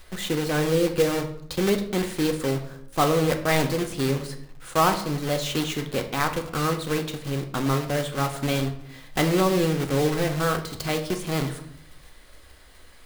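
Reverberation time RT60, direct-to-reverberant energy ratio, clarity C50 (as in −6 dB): 0.70 s, 5.0 dB, 10.5 dB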